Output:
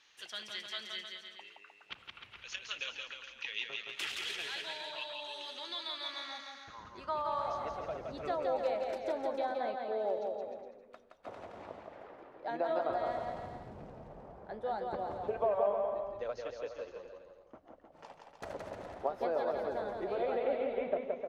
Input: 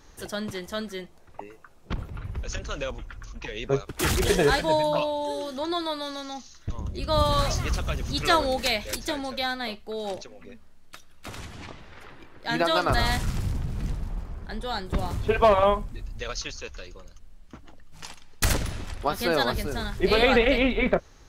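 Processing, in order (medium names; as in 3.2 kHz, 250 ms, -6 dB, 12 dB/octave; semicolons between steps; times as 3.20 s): compression 12:1, threshold -27 dBFS, peak gain reduction 14 dB; band-pass sweep 2.9 kHz -> 610 Hz, 5.83–7.76 s; bouncing-ball echo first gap 170 ms, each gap 0.8×, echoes 5; trim +2 dB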